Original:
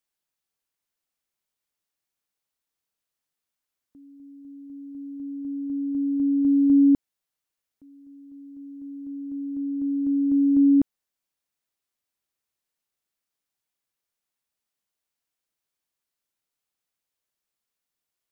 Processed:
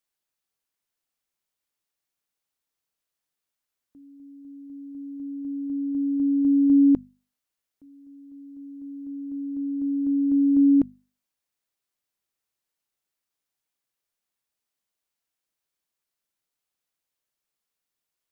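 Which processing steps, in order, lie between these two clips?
mains-hum notches 50/100/150/200/250 Hz

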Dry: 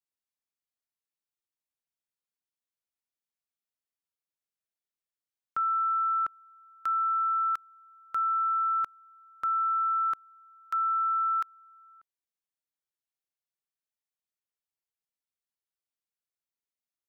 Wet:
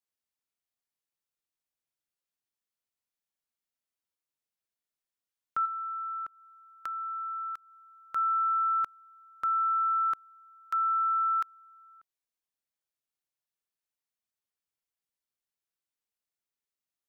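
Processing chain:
0:05.65–0:08.16: downward compressor, threshold −35 dBFS, peak gain reduction 8.5 dB

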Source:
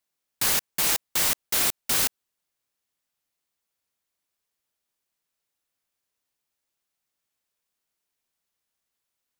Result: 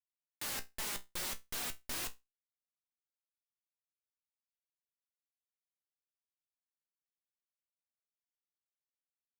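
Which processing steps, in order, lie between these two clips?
adaptive Wiener filter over 9 samples
high-shelf EQ 8,100 Hz −2.5 dB
comparator with hysteresis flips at −40 dBFS
flanger 0.43 Hz, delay 1.9 ms, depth 3.8 ms, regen +58%
tuned comb filter 61 Hz, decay 0.2 s, harmonics all, mix 70%
level +4 dB

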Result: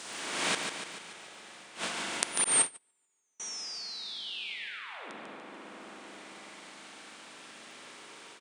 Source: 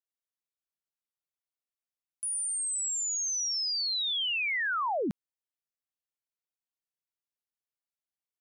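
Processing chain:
compressor on every frequency bin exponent 0.4
surface crackle 20 per second −43 dBFS
high-pass filter 110 Hz 12 dB per octave
spring reverb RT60 3.3 s, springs 41/55 ms, chirp 50 ms, DRR −7.5 dB
automatic gain control gain up to 16 dB
gate with flip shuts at −16 dBFS, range −27 dB
repeating echo 145 ms, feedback 58%, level −6 dB
0:02.44–0:03.40: noise gate −25 dBFS, range −39 dB

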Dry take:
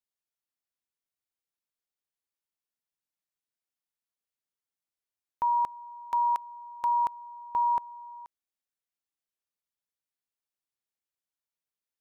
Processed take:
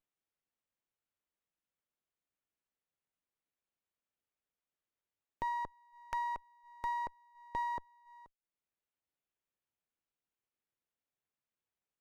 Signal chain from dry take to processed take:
reverb reduction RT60 0.71 s
treble cut that deepens with the level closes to 1,400 Hz, closed at −28.5 dBFS
flat-topped bell 1,200 Hz −10 dB
windowed peak hold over 9 samples
level +2 dB

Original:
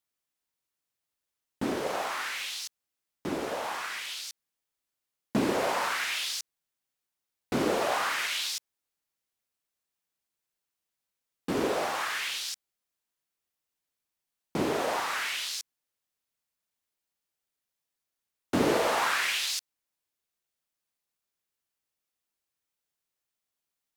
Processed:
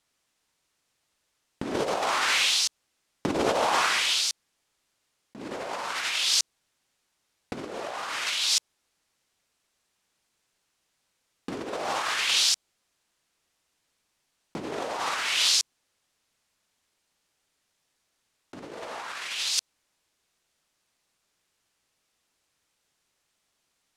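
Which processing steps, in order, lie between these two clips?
low-pass filter 8,700 Hz 12 dB per octave
compressor whose output falls as the input rises −35 dBFS, ratio −0.5
dynamic equaliser 1,800 Hz, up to −5 dB, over −48 dBFS, Q 1.6
level +9 dB

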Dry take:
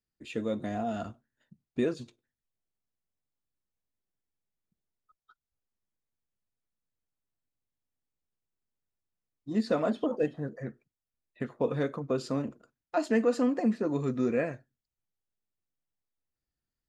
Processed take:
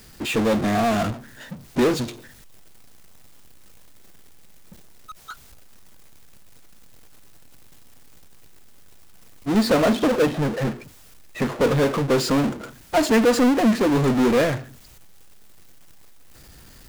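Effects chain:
power curve on the samples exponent 0.35
expander for the loud parts 1.5 to 1, over −35 dBFS
level +5 dB

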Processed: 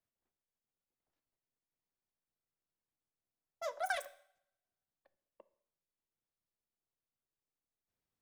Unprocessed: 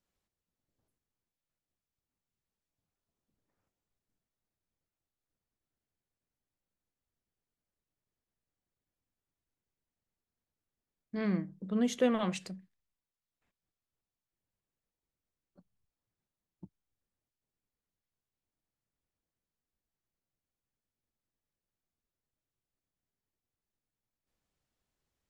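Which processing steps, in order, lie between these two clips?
change of speed 3.08×
coupled-rooms reverb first 0.64 s, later 1.6 s, from −28 dB, DRR 13.5 dB
level −7 dB

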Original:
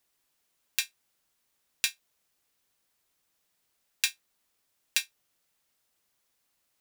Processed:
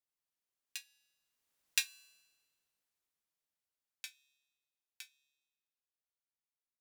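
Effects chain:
source passing by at 0:01.91, 13 m/s, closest 3.5 metres
tuned comb filter 140 Hz, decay 1.3 s, mix 40%
level +2 dB

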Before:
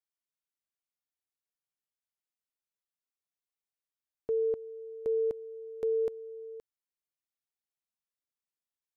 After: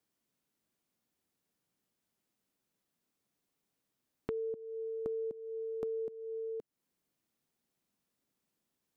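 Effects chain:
parametric band 220 Hz +15 dB 2.4 octaves
downward compressor 6 to 1, threshold −47 dBFS, peak gain reduction 25 dB
level +8 dB

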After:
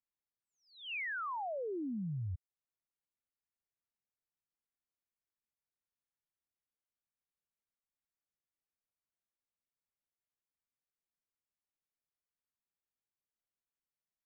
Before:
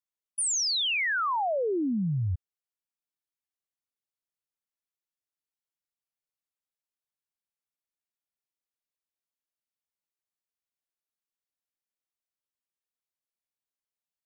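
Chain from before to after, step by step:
Butterworth low-pass 2,400 Hz
low-shelf EQ 210 Hz +8 dB
downward compressor, threshold −33 dBFS, peak gain reduction 12 dB
level −5 dB

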